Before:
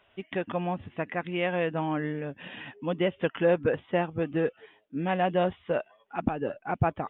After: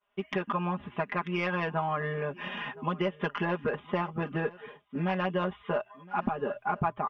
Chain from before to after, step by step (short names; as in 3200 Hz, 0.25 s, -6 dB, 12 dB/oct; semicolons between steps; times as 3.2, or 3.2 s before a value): tracing distortion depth 0.023 ms; expander -52 dBFS; bell 1100 Hz +11 dB 0.73 oct; notches 60/120 Hz; comb 4.9 ms, depth 98%; compressor 3:1, threshold -28 dBFS, peak gain reduction 11 dB; echo 1.016 s -21.5 dB